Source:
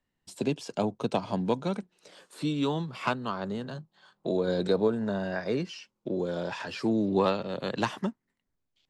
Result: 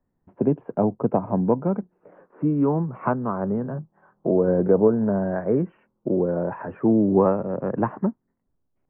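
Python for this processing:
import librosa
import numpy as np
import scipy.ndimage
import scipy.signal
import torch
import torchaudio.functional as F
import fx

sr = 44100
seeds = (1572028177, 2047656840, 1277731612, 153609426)

p1 = fx.rider(x, sr, range_db=10, speed_s=2.0)
p2 = x + (p1 * 10.0 ** (2.0 / 20.0))
p3 = scipy.ndimage.gaussian_filter1d(p2, 7.0, mode='constant')
y = p3 * 10.0 ** (1.0 / 20.0)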